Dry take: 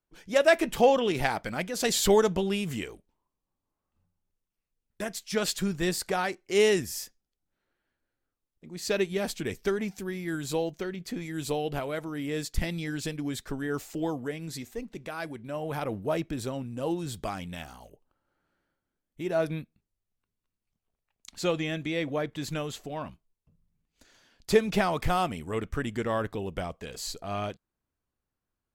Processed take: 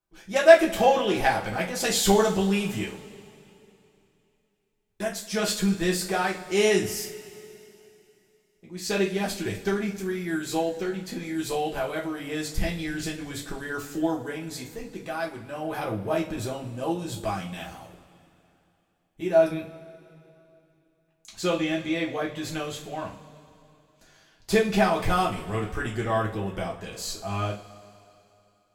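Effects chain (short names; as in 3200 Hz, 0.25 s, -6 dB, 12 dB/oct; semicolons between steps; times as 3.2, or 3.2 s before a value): two-slope reverb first 0.3 s, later 2.9 s, from -21 dB, DRR -4 dB; gain -2 dB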